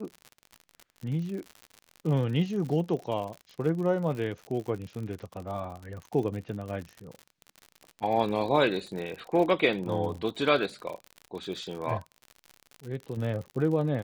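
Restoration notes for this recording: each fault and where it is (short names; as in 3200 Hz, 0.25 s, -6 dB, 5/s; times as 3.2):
crackle 63/s -35 dBFS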